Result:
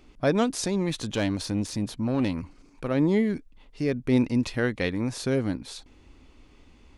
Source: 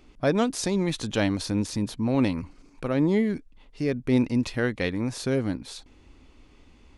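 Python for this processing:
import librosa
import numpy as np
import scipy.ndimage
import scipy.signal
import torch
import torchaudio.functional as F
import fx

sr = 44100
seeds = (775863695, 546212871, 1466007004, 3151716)

y = fx.tube_stage(x, sr, drive_db=18.0, bias=0.3, at=(0.66, 2.91))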